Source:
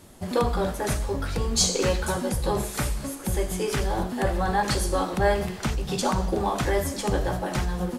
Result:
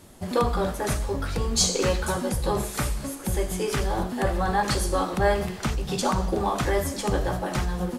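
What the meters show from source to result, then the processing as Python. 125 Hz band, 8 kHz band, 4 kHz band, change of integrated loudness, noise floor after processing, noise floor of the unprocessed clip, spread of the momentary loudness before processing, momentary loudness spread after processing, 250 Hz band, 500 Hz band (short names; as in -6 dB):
0.0 dB, 0.0 dB, 0.0 dB, 0.0 dB, -36 dBFS, -36 dBFS, 6 LU, 5 LU, 0.0 dB, 0.0 dB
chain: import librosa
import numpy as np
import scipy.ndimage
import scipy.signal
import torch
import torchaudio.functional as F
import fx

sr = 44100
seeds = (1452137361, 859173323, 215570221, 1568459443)

y = fx.dynamic_eq(x, sr, hz=1200.0, q=8.0, threshold_db=-46.0, ratio=4.0, max_db=4)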